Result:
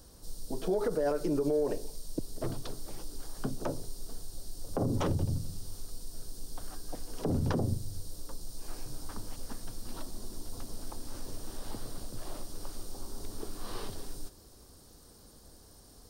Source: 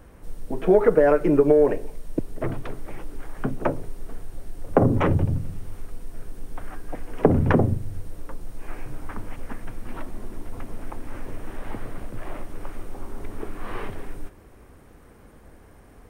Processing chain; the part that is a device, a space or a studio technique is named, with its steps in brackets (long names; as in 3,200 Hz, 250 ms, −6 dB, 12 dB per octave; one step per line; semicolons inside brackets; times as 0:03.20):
over-bright horn tweeter (high shelf with overshoot 3,200 Hz +13 dB, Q 3; brickwall limiter −14 dBFS, peak gain reduction 10.5 dB)
level −7.5 dB